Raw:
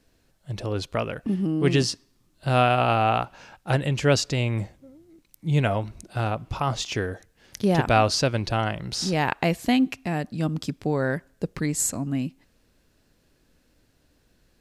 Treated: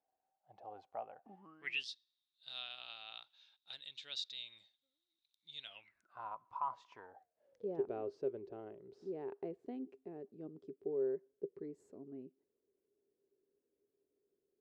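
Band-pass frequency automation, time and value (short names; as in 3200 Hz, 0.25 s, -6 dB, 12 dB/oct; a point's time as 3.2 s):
band-pass, Q 18
1.36 s 770 Hz
1.88 s 3700 Hz
5.64 s 3700 Hz
6.19 s 1000 Hz
6.95 s 1000 Hz
7.79 s 400 Hz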